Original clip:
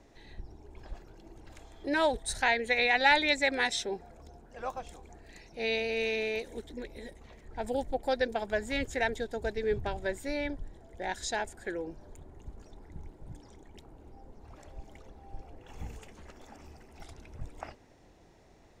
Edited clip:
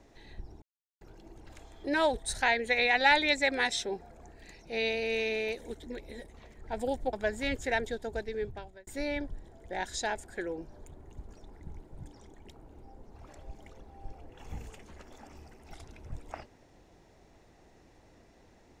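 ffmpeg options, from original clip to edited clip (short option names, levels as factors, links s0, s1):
-filter_complex "[0:a]asplit=6[s0][s1][s2][s3][s4][s5];[s0]atrim=end=0.62,asetpts=PTS-STARTPTS,afade=t=out:st=0.616:d=0.004:c=hsin[s6];[s1]atrim=start=0.62:end=1.01,asetpts=PTS-STARTPTS,volume=0[s7];[s2]atrim=start=1.01:end=4.212,asetpts=PTS-STARTPTS,afade=t=in:d=0.004:c=hsin[s8];[s3]atrim=start=5.078:end=8.002[s9];[s4]atrim=start=8.418:end=10.16,asetpts=PTS-STARTPTS,afade=t=out:st=0.522:d=1.22:c=qsin[s10];[s5]atrim=start=10.16,asetpts=PTS-STARTPTS,afade=t=in:d=0.004:c=hsin[s11];[s6][s7][s8]concat=n=3:v=0:a=1[s12];[s12][s9]acrossfade=d=0.004:c1=hsin:c2=hsin[s13];[s10][s11]concat=n=2:v=0:a=1[s14];[s13][s14]acrossfade=d=0.004:c1=hsin:c2=hsin"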